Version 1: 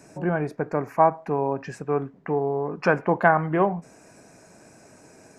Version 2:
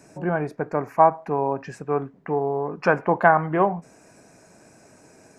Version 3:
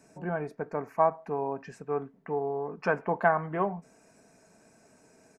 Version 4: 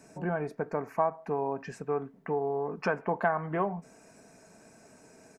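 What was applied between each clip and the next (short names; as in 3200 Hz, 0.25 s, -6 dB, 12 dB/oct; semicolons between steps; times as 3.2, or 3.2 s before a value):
dynamic EQ 910 Hz, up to +4 dB, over -30 dBFS, Q 0.82; gain -1 dB
comb 4.5 ms, depth 33%; gain -8.5 dB
compressor 2:1, threshold -33 dBFS, peak gain reduction 8.5 dB; gain +4 dB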